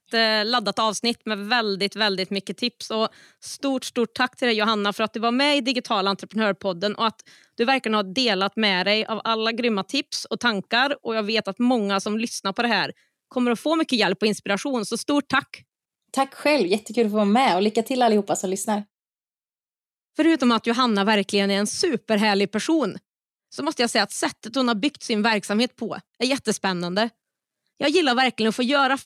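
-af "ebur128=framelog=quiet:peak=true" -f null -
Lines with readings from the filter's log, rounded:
Integrated loudness:
  I:         -22.3 LUFS
  Threshold: -32.6 LUFS
Loudness range:
  LRA:         2.4 LU
  Threshold: -42.9 LUFS
  LRA low:   -24.1 LUFS
  LRA high:  -21.7 LUFS
True peak:
  Peak:       -6.2 dBFS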